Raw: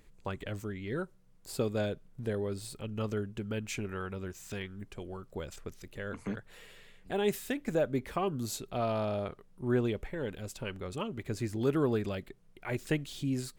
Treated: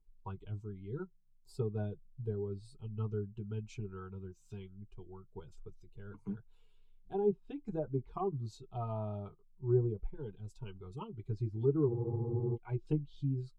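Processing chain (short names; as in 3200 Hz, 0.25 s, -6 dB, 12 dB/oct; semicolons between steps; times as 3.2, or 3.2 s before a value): per-bin expansion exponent 1.5; high shelf 3900 Hz -7.5 dB; fixed phaser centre 370 Hz, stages 8; notch comb 170 Hz; treble ducked by the level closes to 870 Hz, closed at -32.5 dBFS; tilt -2 dB/oct; spectral freeze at 11.91, 0.65 s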